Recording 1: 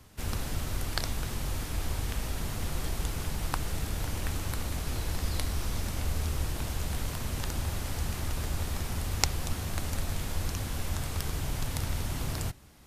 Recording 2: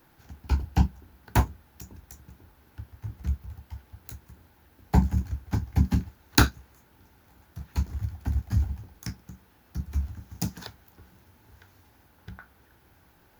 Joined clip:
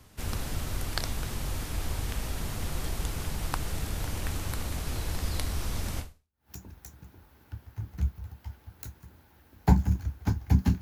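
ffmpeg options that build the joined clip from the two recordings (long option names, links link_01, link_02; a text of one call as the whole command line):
ffmpeg -i cue0.wav -i cue1.wav -filter_complex "[0:a]apad=whole_dur=10.81,atrim=end=10.81,atrim=end=6.51,asetpts=PTS-STARTPTS[link_01];[1:a]atrim=start=1.25:end=6.07,asetpts=PTS-STARTPTS[link_02];[link_01][link_02]acrossfade=duration=0.52:curve1=exp:curve2=exp" out.wav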